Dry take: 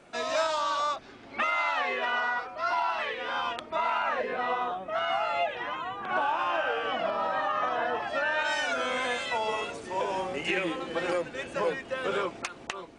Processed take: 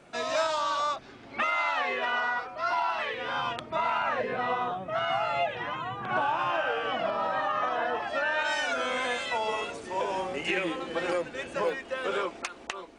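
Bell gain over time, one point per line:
bell 130 Hz 0.86 oct
+4 dB
from 3.14 s +14 dB
from 6.5 s +5 dB
from 7.62 s -2 dB
from 11.69 s -12 dB

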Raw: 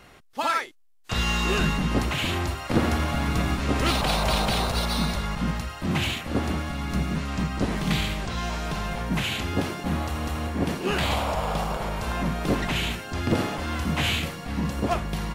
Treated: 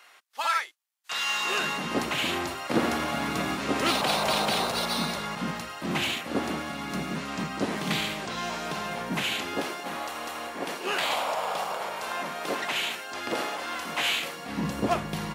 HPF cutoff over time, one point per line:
1.25 s 960 Hz
2.04 s 240 Hz
9.18 s 240 Hz
9.92 s 520 Hz
14.22 s 520 Hz
14.7 s 140 Hz

